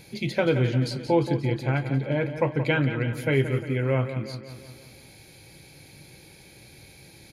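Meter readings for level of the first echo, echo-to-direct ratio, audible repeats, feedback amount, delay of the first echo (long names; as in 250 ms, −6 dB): −10.5 dB, −9.0 dB, 5, 56%, 176 ms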